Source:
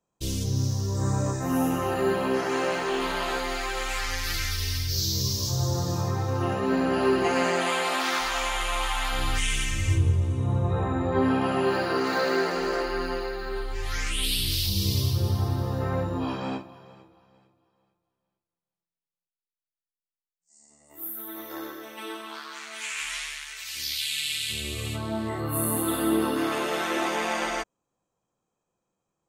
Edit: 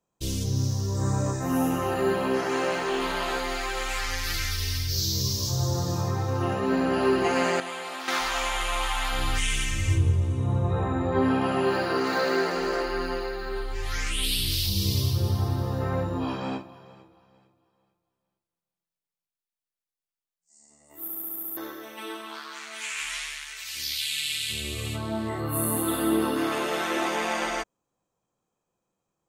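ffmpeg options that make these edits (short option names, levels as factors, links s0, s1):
-filter_complex "[0:a]asplit=11[s0][s1][s2][s3][s4][s5][s6][s7][s8][s9][s10];[s0]atrim=end=7.602[s11];[s1]atrim=start=7.598:end=8.082,asetpts=PTS-STARTPTS,volume=0.355[s12];[s2]atrim=start=8.078:end=21.082[s13];[s3]atrim=start=21.008:end=21.082[s14];[s4]atrim=start=21.008:end=21.082[s15];[s5]atrim=start=21.008:end=21.082[s16];[s6]atrim=start=21.008:end=21.082[s17];[s7]atrim=start=21.008:end=21.082[s18];[s8]atrim=start=21.008:end=21.082[s19];[s9]atrim=start=21.008:end=21.082[s20];[s10]atrim=start=21.568[s21];[s11][s12]acrossfade=d=0.004:c1=hsin:c2=hsin[s22];[s22][s13]acrossfade=d=0.004:c1=hsin:c2=hsin[s23];[s23][s14]acrossfade=d=0.004:c1=hsin:c2=hsin[s24];[s24][s15]acrossfade=d=0.004:c1=hsin:c2=hsin[s25];[s25][s16]acrossfade=d=0.004:c1=hsin:c2=hsin[s26];[s26][s17]acrossfade=d=0.004:c1=hsin:c2=hsin[s27];[s27][s18]acrossfade=d=0.004:c1=hsin:c2=hsin[s28];[s28][s19]acrossfade=d=0.004:c1=hsin:c2=hsin[s29];[s29][s20]acrossfade=d=0.004:c1=hsin:c2=hsin[s30];[s30][s21]acrossfade=d=0.004:c1=hsin:c2=hsin"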